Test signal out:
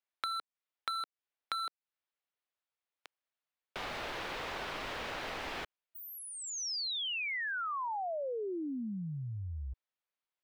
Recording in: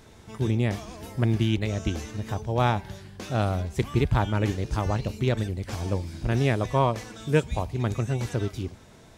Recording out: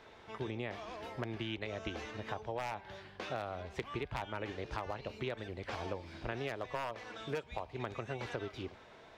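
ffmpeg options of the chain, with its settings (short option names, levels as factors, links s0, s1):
-filter_complex "[0:a]acrossover=split=390 4100:gain=0.178 1 0.0708[s0][s1][s2];[s0][s1][s2]amix=inputs=3:normalize=0,aeval=exprs='0.119*(abs(mod(val(0)/0.119+3,4)-2)-1)':c=same,acompressor=threshold=0.0178:ratio=12"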